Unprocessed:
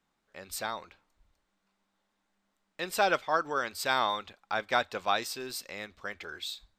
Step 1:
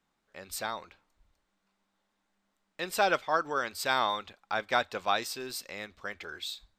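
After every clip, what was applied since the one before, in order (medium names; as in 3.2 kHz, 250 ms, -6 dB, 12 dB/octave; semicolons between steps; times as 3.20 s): no audible change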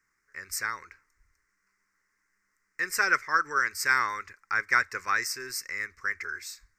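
FFT filter 120 Hz 0 dB, 210 Hz -10 dB, 420 Hz -2 dB, 700 Hz -20 dB, 1.1 kHz +2 dB, 2 kHz +13 dB, 3.4 kHz -22 dB, 5.4 kHz +9 dB, 9.1 kHz +4 dB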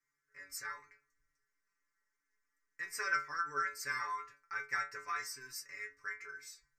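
inharmonic resonator 140 Hz, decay 0.31 s, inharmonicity 0.002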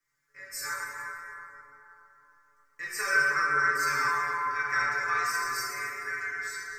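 plate-style reverb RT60 3.6 s, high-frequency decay 0.4×, DRR -7 dB; trim +4 dB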